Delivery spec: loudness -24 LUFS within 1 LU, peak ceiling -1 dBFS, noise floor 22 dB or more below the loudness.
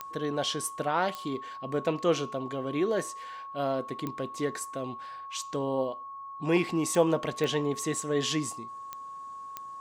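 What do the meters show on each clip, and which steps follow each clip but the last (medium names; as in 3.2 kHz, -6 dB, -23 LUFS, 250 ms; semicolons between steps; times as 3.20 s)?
clicks found 7; steady tone 1.1 kHz; tone level -39 dBFS; loudness -30.5 LUFS; peak level -10.0 dBFS; loudness target -24.0 LUFS
-> de-click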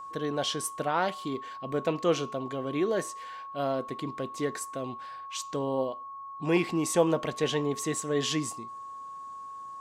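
clicks found 0; steady tone 1.1 kHz; tone level -39 dBFS
-> band-stop 1.1 kHz, Q 30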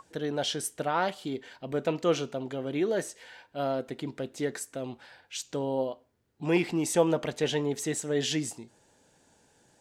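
steady tone not found; loudness -31.0 LUFS; peak level -10.5 dBFS; loudness target -24.0 LUFS
-> trim +7 dB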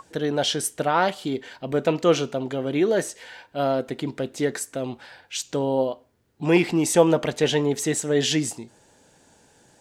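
loudness -24.0 LUFS; peak level -3.5 dBFS; noise floor -58 dBFS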